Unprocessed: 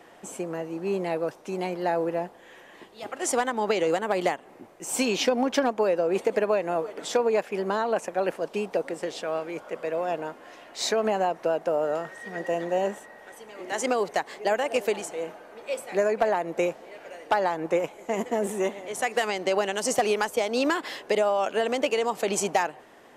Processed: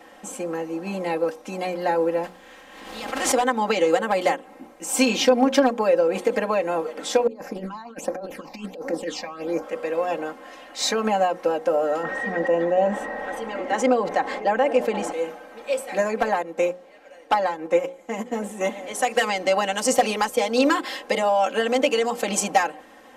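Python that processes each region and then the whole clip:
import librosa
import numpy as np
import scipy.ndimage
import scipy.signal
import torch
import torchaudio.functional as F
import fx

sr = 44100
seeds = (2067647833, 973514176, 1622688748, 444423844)

y = fx.spec_flatten(x, sr, power=0.6, at=(2.23, 3.31), fade=0.02)
y = fx.lowpass(y, sr, hz=3300.0, slope=6, at=(2.23, 3.31), fade=0.02)
y = fx.pre_swell(y, sr, db_per_s=47.0, at=(2.23, 3.31), fade=0.02)
y = fx.chain(y, sr, fx.peak_eq(hz=8400.0, db=-5.5, octaves=0.43),
    fx.over_compress(threshold_db=-31.0, ratio=-0.5),
    fx.phaser_stages(stages=8, low_hz=410.0, high_hz=3300.0, hz=1.4, feedback_pct=25), at=(7.27, 9.63))
y = fx.chain(y, sr, fx.lowpass(hz=1300.0, slope=6),
    fx.env_flatten(amount_pct=50), at=(12.03, 15.12))
y = fx.chain(y, sr, fx.high_shelf(hz=10000.0, db=-3.5),
    fx.upward_expand(threshold_db=-37.0, expansion=1.5), at=(16.42, 18.61))
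y = fx.hum_notches(y, sr, base_hz=60, count=9)
y = y + 0.87 * np.pad(y, (int(3.8 * sr / 1000.0), 0))[:len(y)]
y = y * 10.0 ** (2.0 / 20.0)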